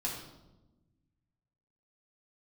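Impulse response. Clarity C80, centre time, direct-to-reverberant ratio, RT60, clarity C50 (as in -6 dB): 6.5 dB, 40 ms, -4.5 dB, 1.0 s, 4.0 dB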